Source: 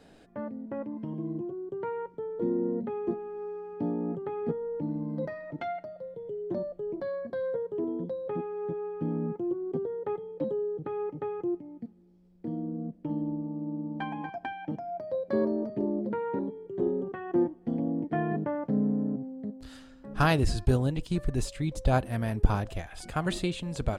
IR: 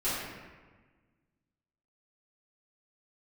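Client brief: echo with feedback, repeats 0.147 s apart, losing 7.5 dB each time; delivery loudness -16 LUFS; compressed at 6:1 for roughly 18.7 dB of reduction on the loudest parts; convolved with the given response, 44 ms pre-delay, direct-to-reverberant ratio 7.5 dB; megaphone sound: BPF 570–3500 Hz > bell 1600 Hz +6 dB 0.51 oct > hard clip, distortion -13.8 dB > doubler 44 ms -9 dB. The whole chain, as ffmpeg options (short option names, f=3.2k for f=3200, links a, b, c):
-filter_complex "[0:a]acompressor=threshold=-37dB:ratio=6,aecho=1:1:147|294|441|588|735:0.422|0.177|0.0744|0.0312|0.0131,asplit=2[a][b];[1:a]atrim=start_sample=2205,adelay=44[c];[b][c]afir=irnorm=-1:irlink=0,volume=-16.5dB[d];[a][d]amix=inputs=2:normalize=0,highpass=570,lowpass=3.5k,equalizer=f=1.6k:t=o:w=0.51:g=6,asoftclip=type=hard:threshold=-39.5dB,asplit=2[e][f];[f]adelay=44,volume=-9dB[g];[e][g]amix=inputs=2:normalize=0,volume=30dB"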